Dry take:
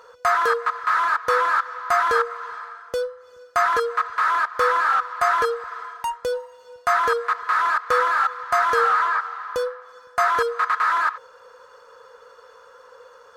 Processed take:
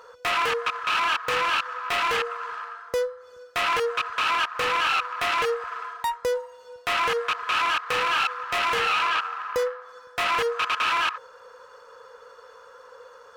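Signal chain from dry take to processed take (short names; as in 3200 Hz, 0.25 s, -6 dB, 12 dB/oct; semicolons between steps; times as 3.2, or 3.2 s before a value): self-modulated delay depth 0.24 ms; limiter -15 dBFS, peak gain reduction 5.5 dB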